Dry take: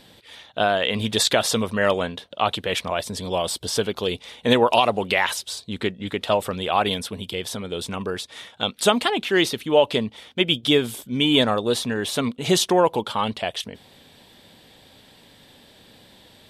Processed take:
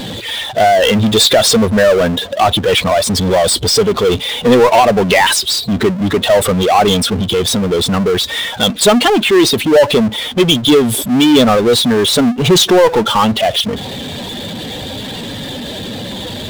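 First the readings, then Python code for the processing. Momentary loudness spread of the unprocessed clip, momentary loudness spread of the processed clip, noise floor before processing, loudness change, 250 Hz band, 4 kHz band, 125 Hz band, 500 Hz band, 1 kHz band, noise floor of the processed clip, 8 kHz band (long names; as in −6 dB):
11 LU, 15 LU, −52 dBFS, +11.0 dB, +12.5 dB, +10.5 dB, +12.5 dB, +11.5 dB, +10.0 dB, −25 dBFS, +12.0 dB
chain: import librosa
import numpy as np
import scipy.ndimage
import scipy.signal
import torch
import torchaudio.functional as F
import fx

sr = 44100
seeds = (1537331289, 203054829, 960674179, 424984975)

y = fx.spec_expand(x, sr, power=1.7)
y = fx.power_curve(y, sr, exponent=0.5)
y = F.gain(torch.from_numpy(y), 5.0).numpy()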